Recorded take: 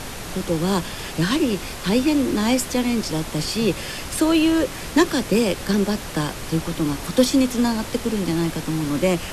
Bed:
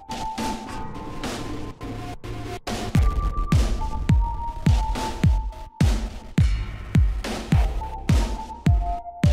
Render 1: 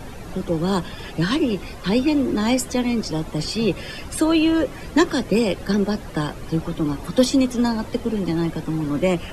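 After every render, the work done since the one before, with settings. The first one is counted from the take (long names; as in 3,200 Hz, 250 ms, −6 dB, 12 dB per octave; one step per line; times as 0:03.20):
broadband denoise 13 dB, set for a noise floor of −33 dBFS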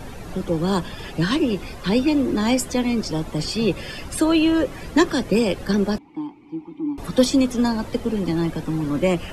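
0:05.98–0:06.98: formant filter u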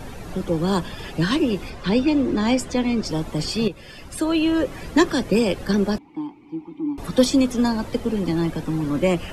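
0:01.70–0:03.05: high-frequency loss of the air 53 metres
0:03.68–0:04.77: fade in, from −12.5 dB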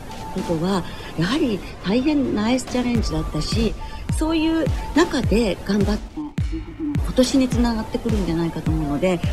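mix in bed −5 dB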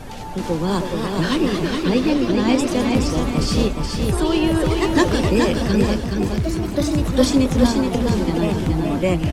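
delay with pitch and tempo change per echo 375 ms, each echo +2 semitones, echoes 3, each echo −6 dB
on a send: repeating echo 422 ms, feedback 36%, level −4.5 dB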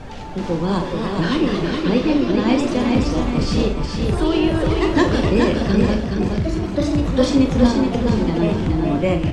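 high-frequency loss of the air 89 metres
on a send: flutter between parallel walls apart 7.1 metres, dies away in 0.32 s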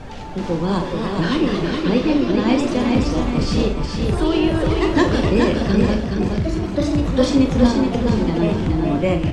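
no processing that can be heard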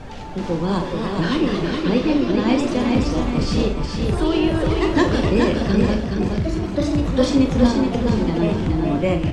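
level −1 dB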